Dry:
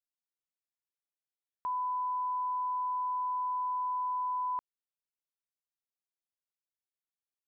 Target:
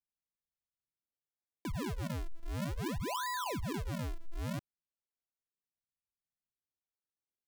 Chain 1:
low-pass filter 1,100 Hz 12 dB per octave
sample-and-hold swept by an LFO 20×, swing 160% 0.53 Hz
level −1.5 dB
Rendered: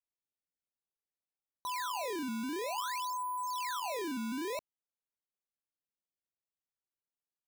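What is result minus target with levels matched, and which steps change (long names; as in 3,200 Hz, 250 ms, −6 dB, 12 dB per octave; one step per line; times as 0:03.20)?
sample-and-hold swept by an LFO: distortion −21 dB
change: sample-and-hold swept by an LFO 74×, swing 160% 0.53 Hz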